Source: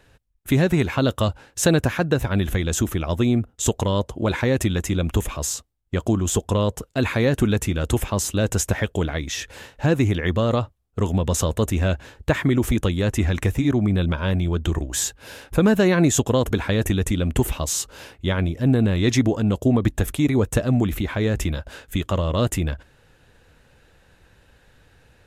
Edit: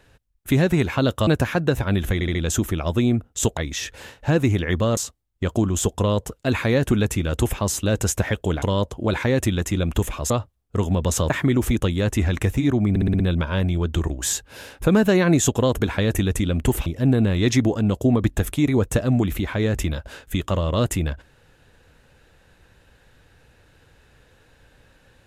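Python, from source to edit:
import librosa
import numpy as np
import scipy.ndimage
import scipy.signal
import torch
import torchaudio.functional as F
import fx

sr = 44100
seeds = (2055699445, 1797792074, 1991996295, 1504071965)

y = fx.edit(x, sr, fx.cut(start_s=1.27, length_s=0.44),
    fx.stutter(start_s=2.58, slice_s=0.07, count=4),
    fx.swap(start_s=3.8, length_s=1.68, other_s=9.13, other_length_s=1.4),
    fx.cut(start_s=11.53, length_s=0.78),
    fx.stutter(start_s=13.91, slice_s=0.06, count=6),
    fx.cut(start_s=17.57, length_s=0.9), tone=tone)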